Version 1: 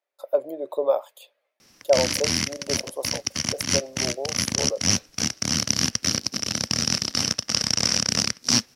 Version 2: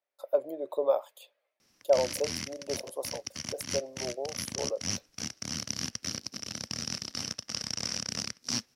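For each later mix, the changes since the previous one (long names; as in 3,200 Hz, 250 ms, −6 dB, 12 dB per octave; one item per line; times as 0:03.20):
speech −4.5 dB
background −12.0 dB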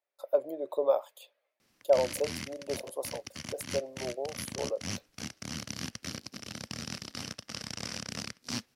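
background: add parametric band 5,600 Hz −9 dB 0.4 octaves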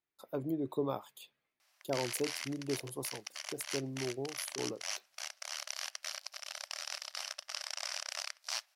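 speech: remove high-pass with resonance 570 Hz, resonance Q 7.1
background: add linear-phase brick-wall high-pass 560 Hz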